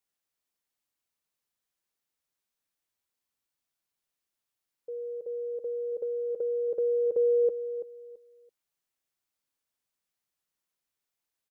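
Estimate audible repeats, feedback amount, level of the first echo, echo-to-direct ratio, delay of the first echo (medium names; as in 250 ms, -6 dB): 2, 24%, -11.0 dB, -10.5 dB, 334 ms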